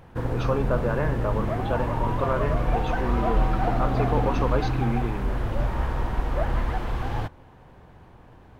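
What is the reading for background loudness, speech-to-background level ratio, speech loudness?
-27.0 LUFS, -3.5 dB, -30.5 LUFS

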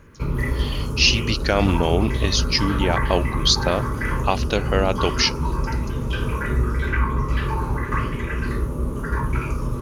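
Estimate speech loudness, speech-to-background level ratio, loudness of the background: -21.5 LUFS, 3.5 dB, -25.0 LUFS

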